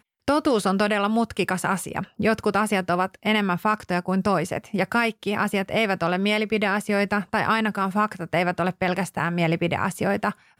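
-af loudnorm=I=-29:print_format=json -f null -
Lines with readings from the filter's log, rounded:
"input_i" : "-23.8",
"input_tp" : "-9.8",
"input_lra" : "1.4",
"input_thresh" : "-33.8",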